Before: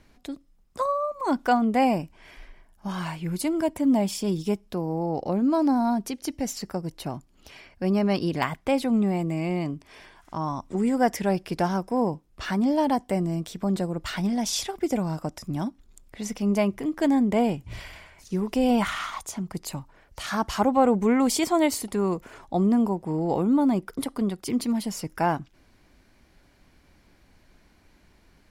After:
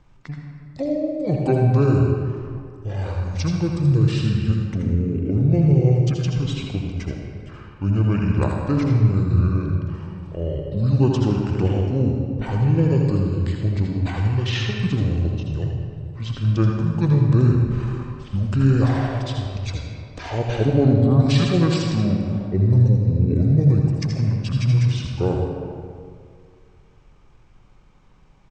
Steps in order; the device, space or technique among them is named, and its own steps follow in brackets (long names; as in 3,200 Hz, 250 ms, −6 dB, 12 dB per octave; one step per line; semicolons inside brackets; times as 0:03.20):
monster voice (pitch shifter −11 semitones; low-shelf EQ 190 Hz +5 dB; single-tap delay 81 ms −7.5 dB; convolution reverb RT60 2.2 s, pre-delay 62 ms, DRR 2 dB)